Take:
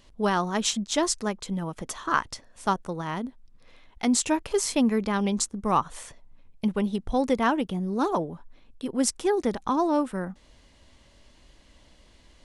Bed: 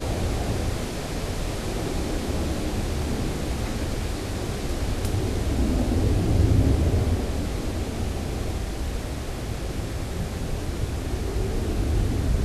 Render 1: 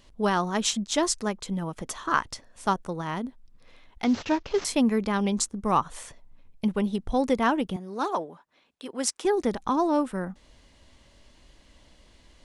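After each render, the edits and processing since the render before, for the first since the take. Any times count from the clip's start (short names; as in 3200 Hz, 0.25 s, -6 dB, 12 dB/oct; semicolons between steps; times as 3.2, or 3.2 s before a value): 4.04–4.65 CVSD 32 kbps; 7.76–9.25 weighting filter A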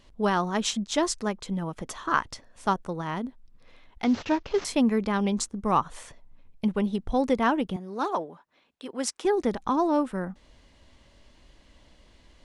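high shelf 6400 Hz -7 dB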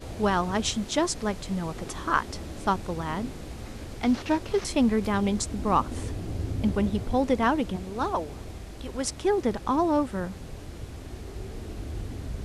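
add bed -11.5 dB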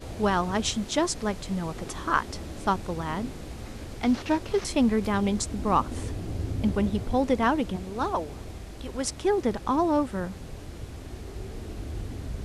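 nothing audible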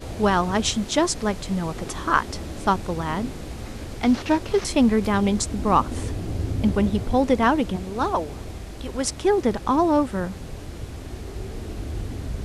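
gain +4.5 dB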